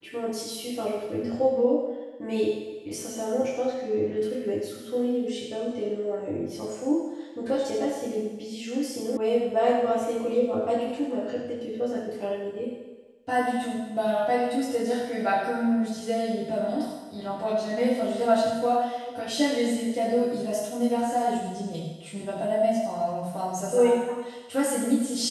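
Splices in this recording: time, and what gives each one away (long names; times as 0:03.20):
0:09.17: cut off before it has died away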